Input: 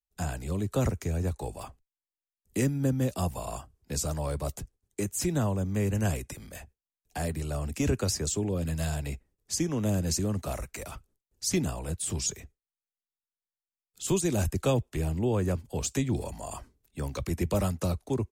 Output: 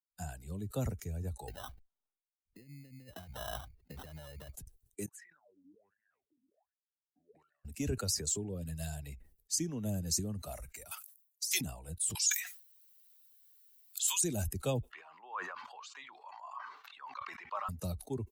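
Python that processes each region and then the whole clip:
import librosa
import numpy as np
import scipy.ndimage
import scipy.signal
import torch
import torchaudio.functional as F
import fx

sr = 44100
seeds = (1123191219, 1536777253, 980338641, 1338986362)

y = fx.chain(x, sr, fx.lowpass(hz=3900.0, slope=12),
    fx.sample_hold(seeds[0], rate_hz=2300.0, jitter_pct=0),
    fx.over_compress(threshold_db=-36.0, ratio=-1.0), at=(1.48, 4.53))
y = fx.chain(y, sr, fx.over_compress(threshold_db=-32.0, ratio=-1.0),
    fx.wah_lfo(hz=1.3, low_hz=260.0, high_hz=1900.0, q=15.0), at=(5.06, 7.65))
y = fx.chain(y, sr, fx.highpass(hz=700.0, slope=12),
    fx.tilt_eq(slope=3.0),
    fx.over_compress(threshold_db=-31.0, ratio=-1.0), at=(10.91, 11.61))
y = fx.chain(y, sr, fx.highpass(hz=1100.0, slope=24),
    fx.env_flatten(amount_pct=70), at=(12.15, 14.24))
y = fx.chain(y, sr, fx.highpass_res(hz=1100.0, q=3.9),
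    fx.air_absorb(metres=210.0),
    fx.sustainer(db_per_s=27.0), at=(14.92, 17.69))
y = fx.bin_expand(y, sr, power=1.5)
y = fx.high_shelf(y, sr, hz=4200.0, db=10.0)
y = fx.sustainer(y, sr, db_per_s=99.0)
y = F.gain(torch.from_numpy(y), -6.5).numpy()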